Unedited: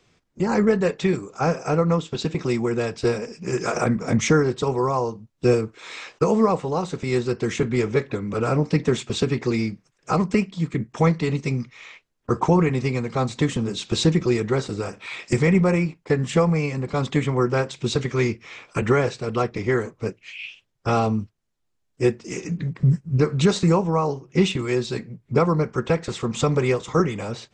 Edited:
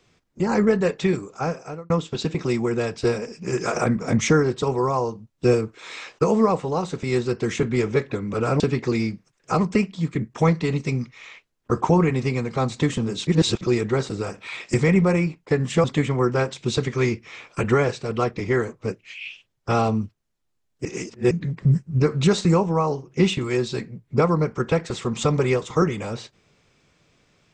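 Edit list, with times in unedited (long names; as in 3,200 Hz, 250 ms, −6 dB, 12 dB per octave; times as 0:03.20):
0:01.21–0:01.90: fade out
0:08.60–0:09.19: remove
0:13.86–0:14.20: reverse
0:16.43–0:17.02: remove
0:22.03–0:22.49: reverse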